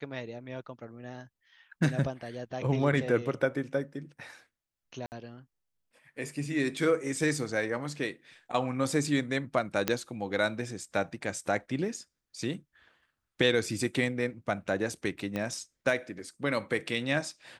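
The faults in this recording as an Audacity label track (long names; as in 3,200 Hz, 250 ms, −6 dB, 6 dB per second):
5.060000	5.120000	drop-out 59 ms
9.880000	9.880000	click −10 dBFS
15.360000	15.360000	click −19 dBFS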